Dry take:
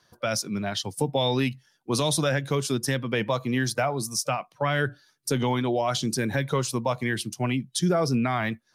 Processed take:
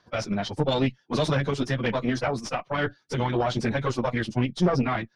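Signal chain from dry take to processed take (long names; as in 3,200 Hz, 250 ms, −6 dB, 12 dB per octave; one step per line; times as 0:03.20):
time stretch by phase vocoder 0.59×
tube saturation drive 22 dB, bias 0.7
high-frequency loss of the air 140 metres
level +8 dB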